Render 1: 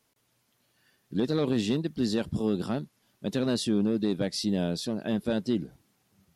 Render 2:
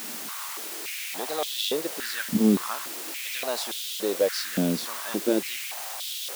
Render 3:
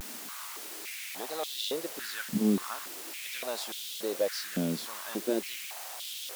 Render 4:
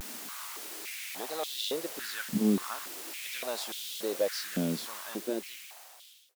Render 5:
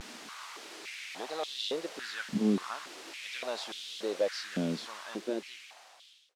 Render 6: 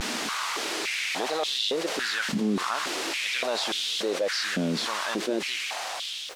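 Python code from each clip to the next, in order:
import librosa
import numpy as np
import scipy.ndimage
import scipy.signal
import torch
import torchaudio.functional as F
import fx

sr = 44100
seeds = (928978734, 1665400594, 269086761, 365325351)

y1 = fx.quant_dither(x, sr, seeds[0], bits=6, dither='triangular')
y1 = fx.filter_held_highpass(y1, sr, hz=3.5, low_hz=230.0, high_hz=3400.0)
y2 = fx.dmg_crackle(y1, sr, seeds[1], per_s=210.0, level_db=-42.0)
y2 = fx.vibrato(y2, sr, rate_hz=0.78, depth_cents=63.0)
y2 = F.gain(torch.from_numpy(y2), -6.0).numpy()
y3 = fx.fade_out_tail(y2, sr, length_s=1.58)
y4 = scipy.signal.sosfilt(scipy.signal.butter(2, 5200.0, 'lowpass', fs=sr, output='sos'), y3)
y4 = fx.low_shelf(y4, sr, hz=200.0, db=-3.5)
y5 = fx.env_flatten(y4, sr, amount_pct=70)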